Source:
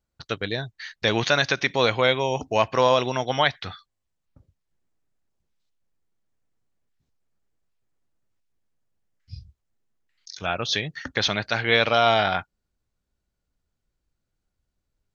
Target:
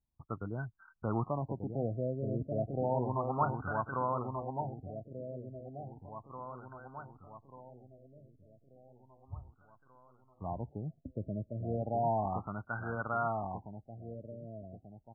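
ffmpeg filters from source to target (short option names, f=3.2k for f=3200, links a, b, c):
-filter_complex "[0:a]equalizer=f=500:t=o:w=1.1:g=-11,asplit=2[a][b];[b]adelay=1187,lowpass=f=4.4k:p=1,volume=-4dB,asplit=2[c][d];[d]adelay=1187,lowpass=f=4.4k:p=1,volume=0.52,asplit=2[e][f];[f]adelay=1187,lowpass=f=4.4k:p=1,volume=0.52,asplit=2[g][h];[h]adelay=1187,lowpass=f=4.4k:p=1,volume=0.52,asplit=2[i][j];[j]adelay=1187,lowpass=f=4.4k:p=1,volume=0.52,asplit=2[k][l];[l]adelay=1187,lowpass=f=4.4k:p=1,volume=0.52,asplit=2[m][n];[n]adelay=1187,lowpass=f=4.4k:p=1,volume=0.52[o];[a][c][e][g][i][k][m][o]amix=inputs=8:normalize=0,afftfilt=real='re*lt(b*sr/1024,650*pow(1600/650,0.5+0.5*sin(2*PI*0.33*pts/sr)))':imag='im*lt(b*sr/1024,650*pow(1600/650,0.5+0.5*sin(2*PI*0.33*pts/sr)))':win_size=1024:overlap=0.75,volume=-4.5dB"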